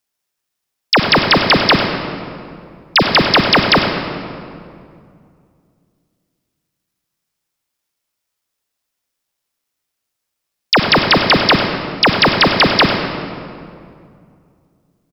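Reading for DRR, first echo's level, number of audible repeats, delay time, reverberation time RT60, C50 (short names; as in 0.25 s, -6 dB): 3.5 dB, -11.5 dB, 1, 99 ms, 2.3 s, 4.5 dB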